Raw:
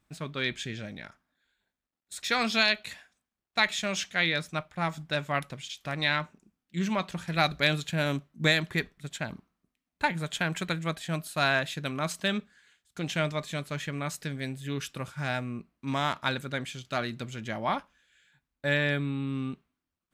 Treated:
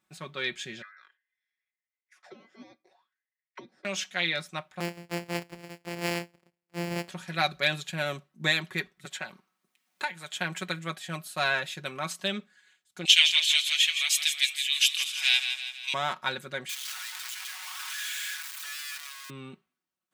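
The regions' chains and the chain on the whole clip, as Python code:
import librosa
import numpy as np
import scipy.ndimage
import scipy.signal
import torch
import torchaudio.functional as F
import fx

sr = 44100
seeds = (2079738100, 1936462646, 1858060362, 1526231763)

y = fx.chain(x, sr, fx.ring_mod(carrier_hz=1800.0),
    fx.high_shelf(hz=2000.0, db=6.5),
    fx.auto_wah(base_hz=240.0, top_hz=2100.0, q=5.8, full_db=-23.5, direction='down'), at=(0.82, 3.85))
y = fx.chain(y, sr, fx.sample_sort(block=256),
    fx.high_shelf(hz=5500.0, db=-7.0), at=(4.8, 7.09))
y = fx.chain(y, sr, fx.low_shelf(hz=500.0, db=-10.5),
    fx.band_squash(depth_pct=70), at=(9.05, 10.36))
y = fx.chain(y, sr, fx.highpass(hz=1100.0, slope=24),
    fx.high_shelf_res(hz=2000.0, db=14.0, q=3.0),
    fx.echo_feedback(ms=164, feedback_pct=52, wet_db=-8.5), at=(13.05, 15.94))
y = fx.chain(y, sr, fx.clip_1bit(),
    fx.bessel_highpass(hz=1800.0, order=8),
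    fx.pre_swell(db_per_s=29.0), at=(16.69, 19.3))
y = scipy.signal.sosfilt(scipy.signal.butter(2, 78.0, 'highpass', fs=sr, output='sos'), y)
y = fx.low_shelf(y, sr, hz=230.0, db=-11.0)
y = y + 0.63 * np.pad(y, (int(5.4 * sr / 1000.0), 0))[:len(y)]
y = y * librosa.db_to_amplitude(-2.0)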